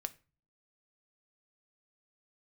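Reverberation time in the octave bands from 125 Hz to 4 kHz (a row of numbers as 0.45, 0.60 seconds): 0.65, 0.65, 0.35, 0.35, 0.30, 0.25 seconds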